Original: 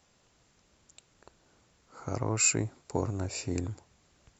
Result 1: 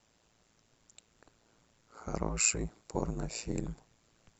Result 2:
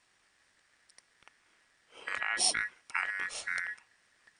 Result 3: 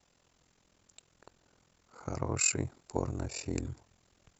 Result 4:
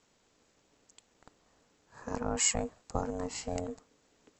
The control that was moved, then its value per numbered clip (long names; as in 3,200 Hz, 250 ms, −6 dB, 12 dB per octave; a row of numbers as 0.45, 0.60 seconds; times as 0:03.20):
ring modulation, frequency: 56, 1,800, 21, 360 Hertz